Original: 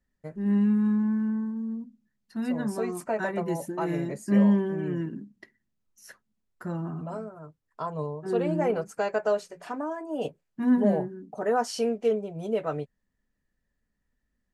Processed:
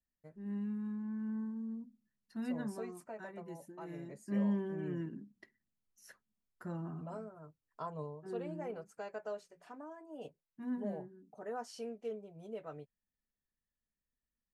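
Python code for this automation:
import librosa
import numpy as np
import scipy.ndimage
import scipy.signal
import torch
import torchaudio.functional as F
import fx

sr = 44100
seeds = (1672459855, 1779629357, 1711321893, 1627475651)

y = fx.gain(x, sr, db=fx.line((1.01, -16.0), (1.41, -9.0), (2.59, -9.0), (3.13, -18.0), (3.81, -18.0), (4.84, -9.0), (7.84, -9.0), (8.6, -16.5)))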